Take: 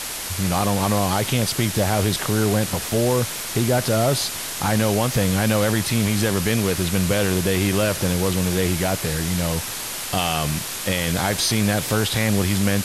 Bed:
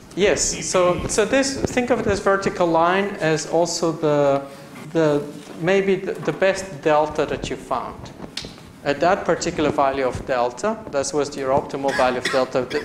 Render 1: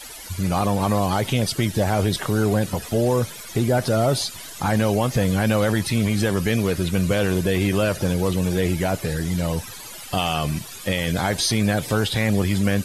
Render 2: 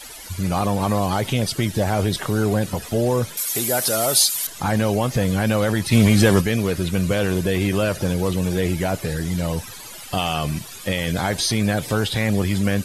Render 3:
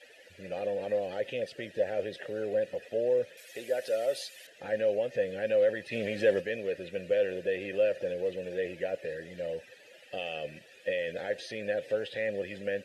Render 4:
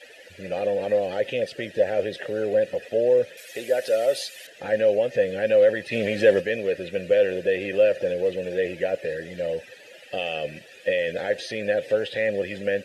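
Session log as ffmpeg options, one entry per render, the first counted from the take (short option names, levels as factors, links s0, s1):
-af "afftdn=nr=15:nf=-30"
-filter_complex "[0:a]asettb=1/sr,asplit=3[s0][s1][s2];[s0]atrim=end=3.374[s3];[s1]atrim=start=3.37:end=4.47,asetpts=PTS-STARTPTS,afade=t=in:d=0.004:c=qsin,afade=t=out:st=1.096:d=0.004:c=qsin,aemphasis=mode=production:type=riaa[s4];[s2]atrim=start=4.466[s5];[s3][s4]acrossfade=d=0.004:c1=hsin:c2=qsin[s6];[s6][s5]acrossfade=d=0.004:c1=qsin:c2=hsin,asplit=3[s7][s8][s9];[s7]afade=t=out:st=5.91:d=0.02[s10];[s8]acontrast=84,afade=t=in:st=5.91:d=0.02,afade=t=out:st=6.4:d=0.02[s11];[s9]afade=t=in:st=6.4:d=0.02[s12];[s10][s11][s12]amix=inputs=3:normalize=0"
-filter_complex "[0:a]asplit=3[s0][s1][s2];[s0]bandpass=f=530:t=q:w=8,volume=1[s3];[s1]bandpass=f=1840:t=q:w=8,volume=0.501[s4];[s2]bandpass=f=2480:t=q:w=8,volume=0.355[s5];[s3][s4][s5]amix=inputs=3:normalize=0"
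-af "volume=2.51"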